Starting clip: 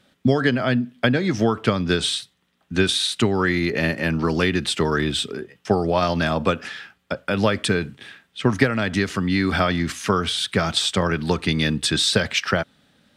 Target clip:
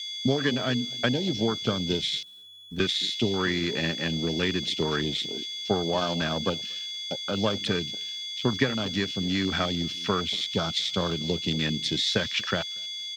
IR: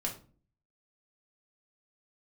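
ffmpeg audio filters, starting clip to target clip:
-filter_complex "[0:a]asplit=2[a][b];[b]adelay=235,lowpass=f=5k:p=1,volume=-16.5dB,asplit=2[c][d];[d]adelay=235,lowpass=f=5k:p=1,volume=0.22[e];[c][e]amix=inputs=2:normalize=0[f];[a][f]amix=inputs=2:normalize=0,adynamicequalizer=threshold=0.0224:dfrequency=820:dqfactor=1.1:tfrequency=820:tqfactor=1.1:attack=5:release=100:ratio=0.375:range=1.5:mode=cutabove:tftype=bell,aeval=exprs='val(0)+0.0708*sin(2*PI*3400*n/s)':c=same,equalizer=f=65:t=o:w=0.99:g=-6,acrusher=bits=7:dc=4:mix=0:aa=0.000001,asettb=1/sr,asplit=3[g][h][i];[g]atrim=end=2.184[j];[h]atrim=start=2.18:end=2.8,asetpts=PTS-STARTPTS,afade=t=in:d=0.004:c=qsin,afade=t=out:st=0.616:d=0.004:c=qsin,acrossover=split=200|3000[k][l][m];[l]acompressor=threshold=-33dB:ratio=6[n];[k][n][m]amix=inputs=3:normalize=0[o];[i]atrim=start=2.796[p];[j][o]acrossfade=d=0.004:c1=hsin:c2=qsin[q];[q][p]acrossfade=d=0.004:c1=qsin:c2=hsin,afwtdn=0.0708,volume=-6dB"

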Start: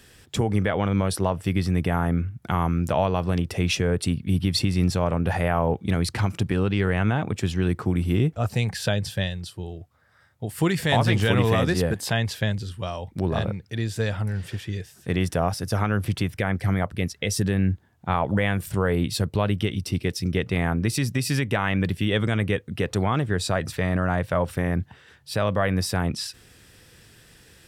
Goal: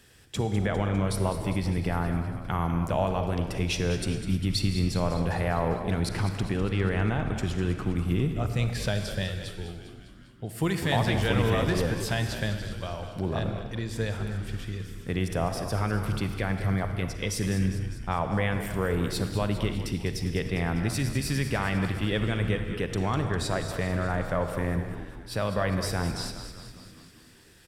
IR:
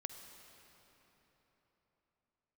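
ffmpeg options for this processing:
-filter_complex "[0:a]asplit=8[a][b][c][d][e][f][g][h];[b]adelay=201,afreqshift=-69,volume=-11dB[i];[c]adelay=402,afreqshift=-138,volume=-15.2dB[j];[d]adelay=603,afreqshift=-207,volume=-19.3dB[k];[e]adelay=804,afreqshift=-276,volume=-23.5dB[l];[f]adelay=1005,afreqshift=-345,volume=-27.6dB[m];[g]adelay=1206,afreqshift=-414,volume=-31.8dB[n];[h]adelay=1407,afreqshift=-483,volume=-35.9dB[o];[a][i][j][k][l][m][n][o]amix=inputs=8:normalize=0[p];[1:a]atrim=start_sample=2205,afade=t=out:st=0.42:d=0.01,atrim=end_sample=18963,asetrate=52920,aresample=44100[q];[p][q]afir=irnorm=-1:irlink=0"

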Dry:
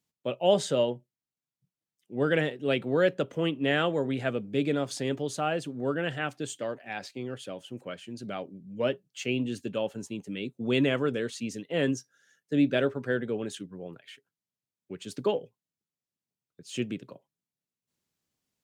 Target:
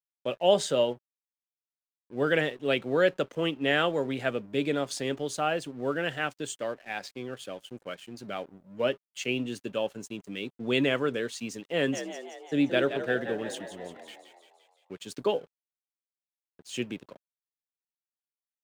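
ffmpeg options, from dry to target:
-filter_complex "[0:a]lowshelf=f=280:g=-8,aeval=exprs='sgn(val(0))*max(abs(val(0))-0.0015,0)':c=same,asplit=3[a][b][c];[a]afade=t=out:st=11.92:d=0.02[d];[b]asplit=8[e][f][g][h][i][j][k][l];[f]adelay=173,afreqshift=58,volume=-10dB[m];[g]adelay=346,afreqshift=116,volume=-14.6dB[n];[h]adelay=519,afreqshift=174,volume=-19.2dB[o];[i]adelay=692,afreqshift=232,volume=-23.7dB[p];[j]adelay=865,afreqshift=290,volume=-28.3dB[q];[k]adelay=1038,afreqshift=348,volume=-32.9dB[r];[l]adelay=1211,afreqshift=406,volume=-37.5dB[s];[e][m][n][o][p][q][r][s]amix=inputs=8:normalize=0,afade=t=in:st=11.92:d=0.02,afade=t=out:st=14.97:d=0.02[t];[c]afade=t=in:st=14.97:d=0.02[u];[d][t][u]amix=inputs=3:normalize=0,volume=2.5dB"

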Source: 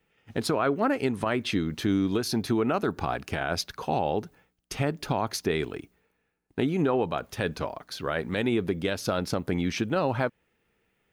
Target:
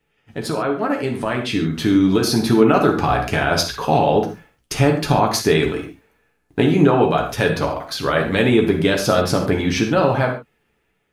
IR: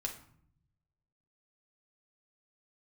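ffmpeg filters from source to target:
-filter_complex "[0:a]dynaudnorm=f=710:g=5:m=9dB[a];[1:a]atrim=start_sample=2205,atrim=end_sample=4410,asetrate=28665,aresample=44100[b];[a][b]afir=irnorm=-1:irlink=0"

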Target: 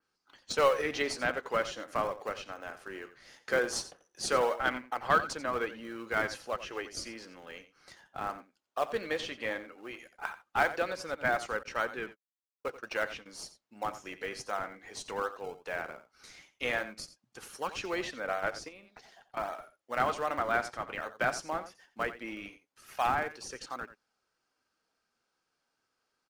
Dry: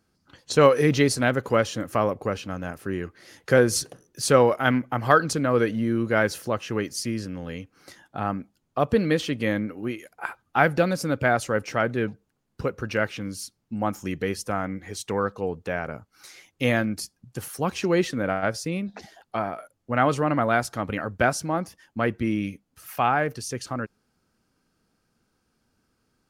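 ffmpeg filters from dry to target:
-filter_complex "[0:a]highpass=650,lowpass=7.6k,asplit=2[a][b];[b]acrusher=samples=34:mix=1:aa=0.000001:lfo=1:lforange=34:lforate=2.6,volume=-12dB[c];[a][c]amix=inputs=2:normalize=0,acontrast=84,aecho=1:1:88:0.2,asettb=1/sr,asplit=3[d][e][f];[d]atrim=end=11.634[g];[e]atrim=start=11.63:end=13.26,asetpts=PTS-STARTPTS,afade=t=in:d=0.004:c=qsin,afade=t=out:st=1.626:d=0.004:c=qsin,agate=range=-51dB:threshold=-31dB:ratio=16:detection=peak[h];[f]atrim=start=13.256[i];[g][h]acrossfade=d=0.004:c1=hsin:c2=qsin[j];[j][i]acrossfade=d=0.004:c1=qsin:c2=hsin,asettb=1/sr,asplit=3[k][l][m];[k]atrim=end=18.684[n];[l]atrim=start=18.68:end=19.37,asetpts=PTS-STARTPTS,afade=t=in:d=0.004:c=qsin,afade=t=out:st=0.686:d=0.004:c=qsin,acompressor=threshold=-36dB:ratio=6[o];[m]atrim=start=19.366[p];[n][o]acrossfade=d=0.004:c1=hsin:c2=qsin[q];[q][p]acrossfade=d=0.004:c1=qsin:c2=hsin,flanger=delay=0.7:depth=7.8:regen=-72:speed=0.17:shape=sinusoidal,adynamicequalizer=threshold=0.01:dfrequency=4200:dqfactor=0.7:tfrequency=4200:tqfactor=0.7:attack=5:release=100:ratio=0.375:range=3:mode=cutabove:tftype=highshelf,volume=-8dB"

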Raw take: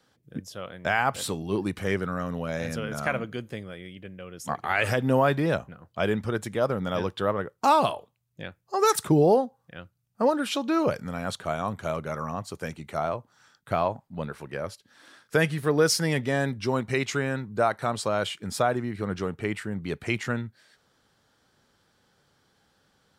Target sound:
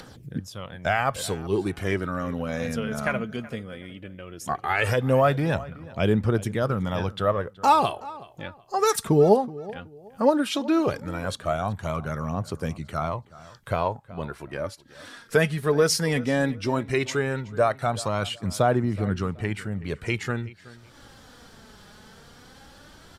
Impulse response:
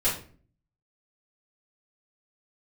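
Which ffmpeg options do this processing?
-filter_complex "[0:a]lowshelf=f=81:g=11.5,acompressor=mode=upward:threshold=-35dB:ratio=2.5,aphaser=in_gain=1:out_gain=1:delay=4.9:decay=0.42:speed=0.16:type=triangular,asplit=2[a][b];[b]adelay=374,lowpass=f=4k:p=1,volume=-19dB,asplit=2[c][d];[d]adelay=374,lowpass=f=4k:p=1,volume=0.29[e];[c][e]amix=inputs=2:normalize=0[f];[a][f]amix=inputs=2:normalize=0,aresample=32000,aresample=44100"

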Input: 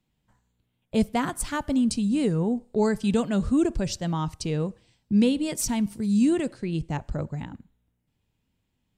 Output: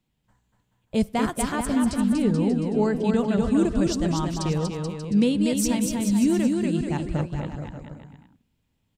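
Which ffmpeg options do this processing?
-filter_complex "[0:a]asettb=1/sr,asplit=3[a][b][c];[a]atrim=end=1.524[d];[b]atrim=start=1.52:end=3.39,asetpts=PTS-STARTPTS,afade=t=in:d=0.004:c=qsin,afade=t=out:st=1.866:d=0.004:c=qsin,highshelf=f=4.8k:g=-11.5[e];[c]atrim=start=3.386[f];[d][e]acrossfade=d=0.004:c1=hsin:c2=qsin[g];[g][f]acrossfade=d=0.004:c1=qsin:c2=hsin,asplit=2[h][i];[i]aecho=0:1:240|432|585.6|708.5|806.8:0.631|0.398|0.251|0.158|0.1[j];[h][j]amix=inputs=2:normalize=0"

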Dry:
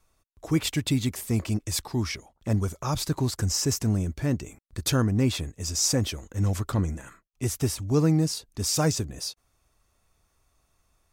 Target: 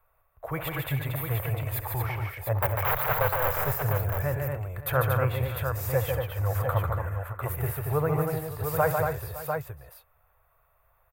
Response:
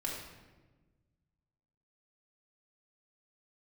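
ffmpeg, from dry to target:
-filter_complex "[0:a]asplit=3[a][b][c];[a]afade=t=out:st=2.58:d=0.02[d];[b]aeval=exprs='(mod(12.6*val(0)+1,2)-1)/12.6':c=same,afade=t=in:st=2.58:d=0.02,afade=t=out:st=3.51:d=0.02[e];[c]afade=t=in:st=3.51:d=0.02[f];[d][e][f]amix=inputs=3:normalize=0,firequalizer=gain_entry='entry(140,0);entry(210,-26);entry(510,7);entry(1500,7);entry(5500,-27);entry(14000,11)':delay=0.05:min_phase=1,aecho=1:1:67|147|232|274|562|700:0.178|0.596|0.562|0.141|0.141|0.501,volume=-2.5dB"

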